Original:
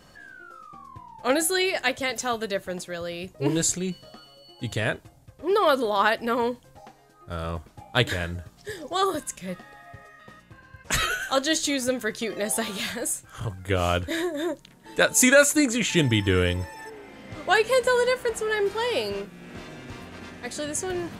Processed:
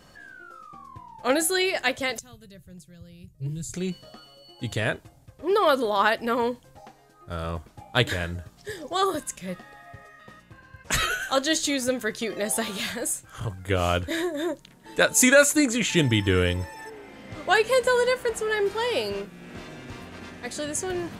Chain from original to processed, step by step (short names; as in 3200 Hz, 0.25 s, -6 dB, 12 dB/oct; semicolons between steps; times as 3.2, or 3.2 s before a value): 2.19–3.74 EQ curve 150 Hz 0 dB, 220 Hz -16 dB, 850 Hz -29 dB, 13000 Hz -10 dB